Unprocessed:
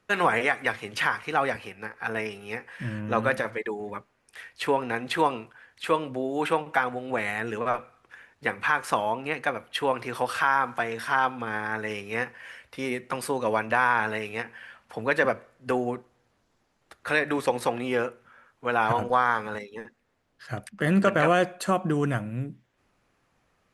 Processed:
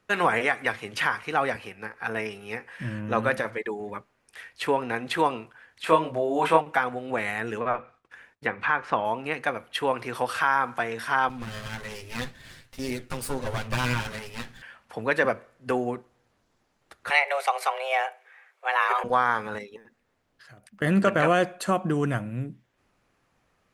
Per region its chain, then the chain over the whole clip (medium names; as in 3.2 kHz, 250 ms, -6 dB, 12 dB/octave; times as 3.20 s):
5.84–6.61 s: doubling 25 ms -3 dB + small resonant body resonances 660/990 Hz, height 8 dB, ringing for 25 ms
7.59–9.05 s: expander -56 dBFS + low-pass that closes with the level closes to 2.8 kHz, closed at -25.5 dBFS
11.29–14.62 s: comb filter that takes the minimum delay 7.7 ms + tone controls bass +11 dB, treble +8 dB + flange 1.8 Hz, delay 6.5 ms, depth 8.4 ms, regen -81%
17.10–19.04 s: high-pass 190 Hz + peaking EQ 2 kHz +11 dB 0.2 oct + frequency shift +270 Hz
19.76–20.82 s: compression 5:1, threshold -49 dBFS + modulation noise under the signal 35 dB
whole clip: none